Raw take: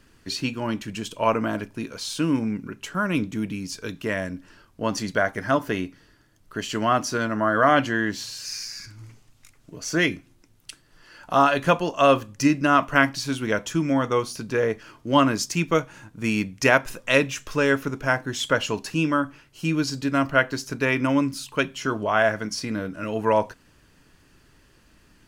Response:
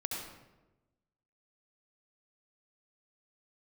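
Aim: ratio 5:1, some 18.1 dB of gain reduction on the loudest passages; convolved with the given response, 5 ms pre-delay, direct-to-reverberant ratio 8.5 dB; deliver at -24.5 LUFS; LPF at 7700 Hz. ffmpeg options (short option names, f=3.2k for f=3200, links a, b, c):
-filter_complex "[0:a]lowpass=7.7k,acompressor=threshold=-34dB:ratio=5,asplit=2[a][b];[1:a]atrim=start_sample=2205,adelay=5[c];[b][c]afir=irnorm=-1:irlink=0,volume=-11dB[d];[a][d]amix=inputs=2:normalize=0,volume=12dB"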